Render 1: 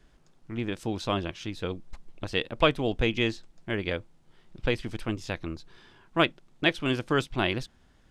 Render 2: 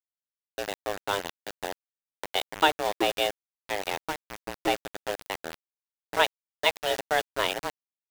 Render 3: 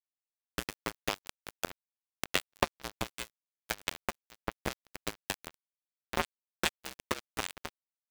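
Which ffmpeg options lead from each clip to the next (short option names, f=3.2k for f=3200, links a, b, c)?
-filter_complex "[0:a]afreqshift=300,asplit=2[a][b];[b]adelay=1458,volume=-7dB,highshelf=f=4k:g=-32.8[c];[a][c]amix=inputs=2:normalize=0,aeval=exprs='val(0)*gte(abs(val(0)),0.0501)':c=same"
-af "acompressor=threshold=-31dB:ratio=10,afreqshift=-240,acrusher=bits=3:mix=0:aa=0.5,volume=7.5dB"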